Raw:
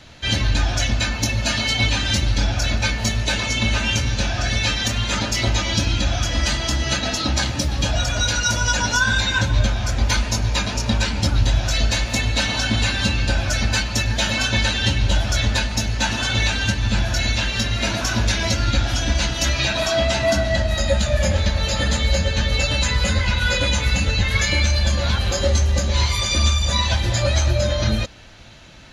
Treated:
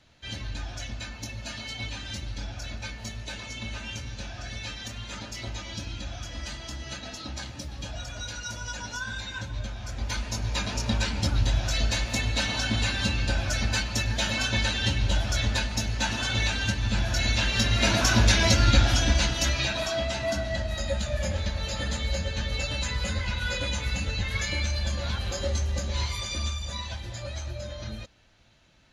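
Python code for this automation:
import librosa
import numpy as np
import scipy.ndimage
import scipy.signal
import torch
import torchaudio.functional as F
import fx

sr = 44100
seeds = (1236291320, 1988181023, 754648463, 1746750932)

y = fx.gain(x, sr, db=fx.line((9.65, -16.0), (10.73, -6.5), (16.95, -6.5), (17.98, 0.0), (18.81, 0.0), (20.06, -10.0), (26.01, -10.0), (27.08, -17.0)))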